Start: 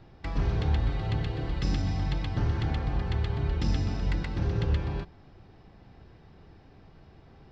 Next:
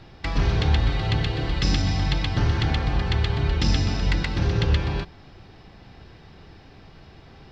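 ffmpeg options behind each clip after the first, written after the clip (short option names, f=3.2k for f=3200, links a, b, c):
-af "equalizer=f=4.2k:t=o:w=2.8:g=8,volume=5.5dB"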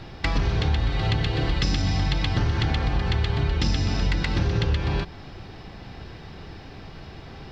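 -af "acompressor=threshold=-27dB:ratio=4,volume=6.5dB"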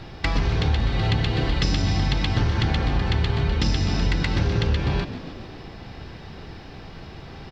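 -filter_complex "[0:a]asplit=8[a][b][c][d][e][f][g][h];[b]adelay=139,afreqshift=60,volume=-13.5dB[i];[c]adelay=278,afreqshift=120,volume=-17.7dB[j];[d]adelay=417,afreqshift=180,volume=-21.8dB[k];[e]adelay=556,afreqshift=240,volume=-26dB[l];[f]adelay=695,afreqshift=300,volume=-30.1dB[m];[g]adelay=834,afreqshift=360,volume=-34.3dB[n];[h]adelay=973,afreqshift=420,volume=-38.4dB[o];[a][i][j][k][l][m][n][o]amix=inputs=8:normalize=0,volume=1dB"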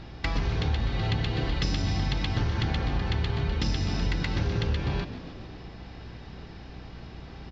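-af "aeval=exprs='val(0)+0.0112*(sin(2*PI*60*n/s)+sin(2*PI*2*60*n/s)/2+sin(2*PI*3*60*n/s)/3+sin(2*PI*4*60*n/s)/4+sin(2*PI*5*60*n/s)/5)':c=same,aresample=16000,aresample=44100,volume=-5.5dB"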